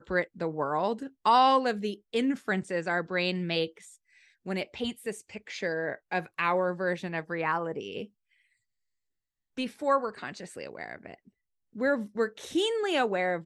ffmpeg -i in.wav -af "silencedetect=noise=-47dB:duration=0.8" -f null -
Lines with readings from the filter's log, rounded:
silence_start: 8.06
silence_end: 9.57 | silence_duration: 1.51